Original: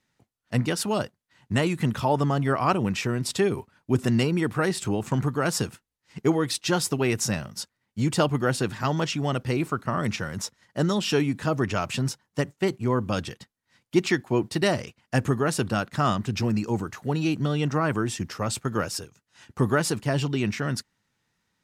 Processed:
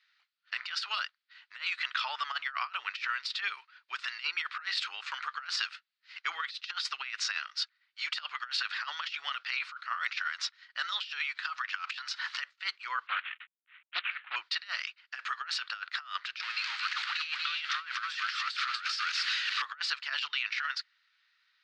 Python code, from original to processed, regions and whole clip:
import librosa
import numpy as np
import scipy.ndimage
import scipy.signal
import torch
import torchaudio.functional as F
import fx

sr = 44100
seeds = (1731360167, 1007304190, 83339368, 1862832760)

y = fx.chain(x, sr, fx.cheby1_bandstop(low_hz=280.0, high_hz=800.0, order=2),
    fx.pre_swell(db_per_s=83.0), at=(11.19, 12.4))
y = fx.chain(y, sr, fx.cvsd(bps=16000),
    fx.doppler_dist(depth_ms=0.53), at=(13.07, 14.36))
y = fx.chain(y, sr, fx.zero_step(step_db=-28.0),
    fx.highpass(hz=1200.0, slope=12),
    fx.echo_single(ms=240, db=-6.0), at=(16.42, 19.62))
y = scipy.signal.sosfilt(scipy.signal.ellip(3, 1.0, 70, [1300.0, 4500.0], 'bandpass', fs=sr, output='sos'), y)
y = fx.high_shelf(y, sr, hz=2900.0, db=4.0)
y = fx.over_compress(y, sr, threshold_db=-36.0, ratio=-0.5)
y = F.gain(torch.from_numpy(y), 2.5).numpy()